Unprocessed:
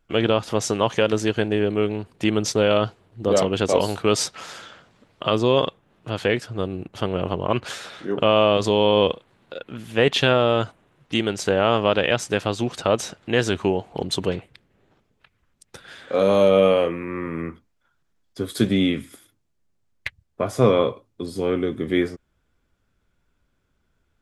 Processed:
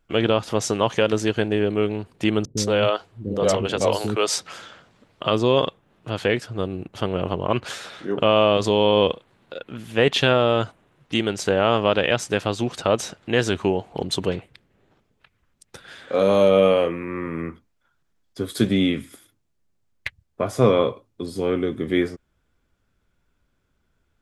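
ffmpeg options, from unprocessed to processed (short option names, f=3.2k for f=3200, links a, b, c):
-filter_complex "[0:a]asettb=1/sr,asplit=3[a][b][c];[a]atrim=end=2.454[d];[b]atrim=start=2.45:end=4.54,asetpts=PTS-STARTPTS,afade=t=in:d=0.004:c=qsin,afade=t=out:st=2.086:d=0.004:c=qsin,acrossover=split=330[e][f];[f]adelay=120[g];[e][g]amix=inputs=2:normalize=0,atrim=end_sample=92169[h];[c]atrim=start=4.536[i];[d][h]acrossfade=d=0.004:c1=hsin:c2=qsin[j];[j][i]acrossfade=d=0.004:c1=qsin:c2=hsin"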